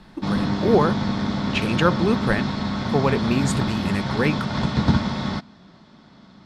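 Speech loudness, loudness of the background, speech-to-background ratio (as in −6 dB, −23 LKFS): −24.0 LKFS, −24.5 LKFS, 0.5 dB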